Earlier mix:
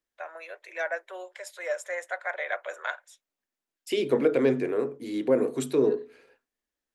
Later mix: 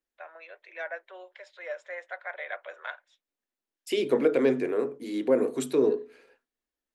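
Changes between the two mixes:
first voice: add transistor ladder low-pass 4,700 Hz, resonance 25%
master: add parametric band 110 Hz −14 dB 0.49 octaves

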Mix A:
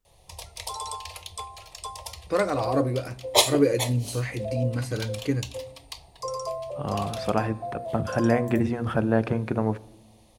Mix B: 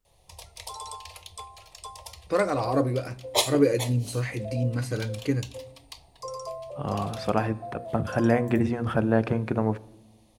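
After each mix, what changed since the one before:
background −4.5 dB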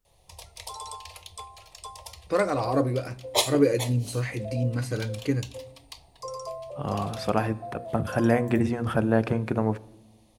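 second voice: add high-shelf EQ 8,400 Hz +11.5 dB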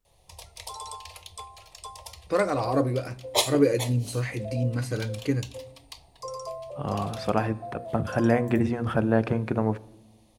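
second voice: add high-shelf EQ 8,200 Hz −11 dB

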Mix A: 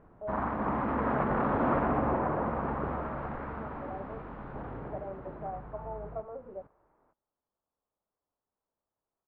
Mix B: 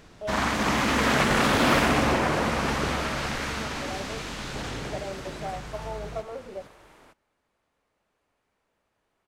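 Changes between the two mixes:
second sound +10.0 dB
master: remove transistor ladder low-pass 1,400 Hz, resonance 25%

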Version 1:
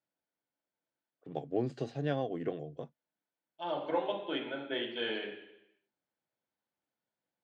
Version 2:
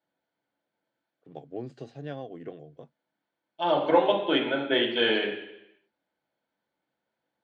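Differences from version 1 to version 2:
first voice −4.5 dB
second voice +11.5 dB

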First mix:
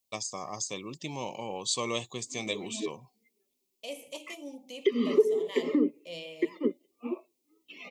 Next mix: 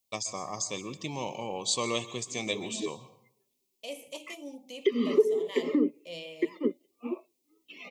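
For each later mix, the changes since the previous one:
reverb: on, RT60 0.60 s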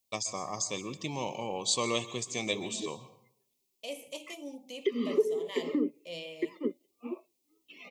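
background −4.0 dB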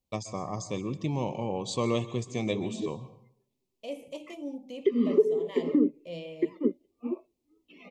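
master: add spectral tilt −3.5 dB per octave

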